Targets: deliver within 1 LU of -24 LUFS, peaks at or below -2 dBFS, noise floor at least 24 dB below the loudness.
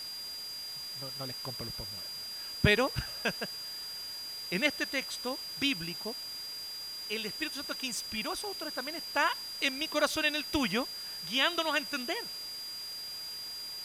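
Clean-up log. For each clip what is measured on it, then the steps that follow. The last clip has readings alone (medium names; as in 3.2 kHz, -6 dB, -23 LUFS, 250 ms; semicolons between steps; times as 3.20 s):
steady tone 4.8 kHz; tone level -39 dBFS; noise floor -41 dBFS; noise floor target -57 dBFS; loudness -33.0 LUFS; peak level -10.5 dBFS; loudness target -24.0 LUFS
-> band-stop 4.8 kHz, Q 30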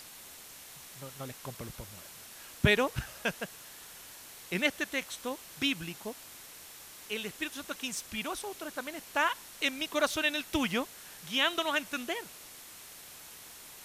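steady tone not found; noise floor -50 dBFS; noise floor target -57 dBFS
-> noise reduction 7 dB, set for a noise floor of -50 dBFS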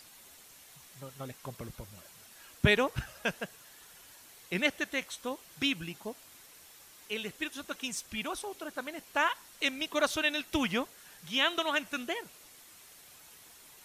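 noise floor -55 dBFS; noise floor target -57 dBFS
-> noise reduction 6 dB, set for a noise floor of -55 dBFS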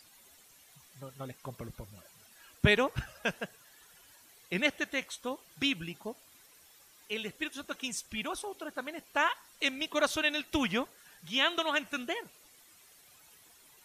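noise floor -60 dBFS; loudness -32.5 LUFS; peak level -11.0 dBFS; loudness target -24.0 LUFS
-> trim +8.5 dB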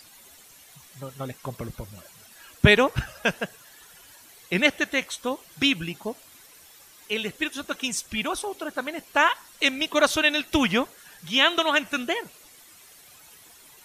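loudness -24.0 LUFS; peak level -2.5 dBFS; noise floor -52 dBFS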